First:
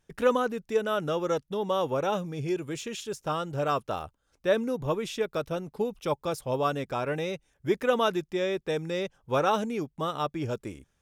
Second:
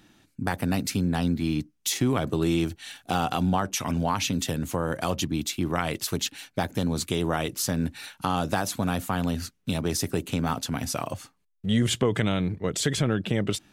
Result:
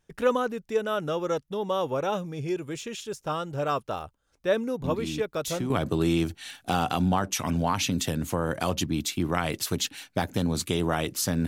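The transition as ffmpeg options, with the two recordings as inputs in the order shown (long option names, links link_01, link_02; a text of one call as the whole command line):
ffmpeg -i cue0.wav -i cue1.wav -filter_complex "[1:a]asplit=2[link_01][link_02];[0:a]apad=whole_dur=11.47,atrim=end=11.47,atrim=end=5.702[link_03];[link_02]atrim=start=2.108:end=7.88[link_04];[link_01]atrim=start=1.25:end=2.11,asetpts=PTS-STARTPTS,volume=-7.5dB,afade=type=in:duration=0.004:curve=hsin,afade=type=out:start_time=0.856:duration=0.004:curve=hsin,adelay=4840[link_05];[link_03][link_04]acrossfade=duration=0.004:curve1=hsin:curve2=hsin[link_06];[link_06][link_05]amix=inputs=2:normalize=0" out.wav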